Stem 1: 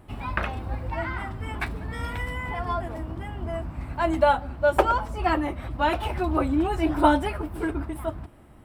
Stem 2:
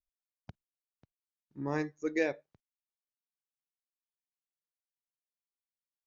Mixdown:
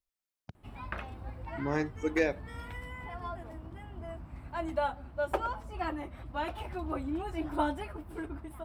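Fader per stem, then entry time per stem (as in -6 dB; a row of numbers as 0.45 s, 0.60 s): -11.5 dB, +2.0 dB; 0.55 s, 0.00 s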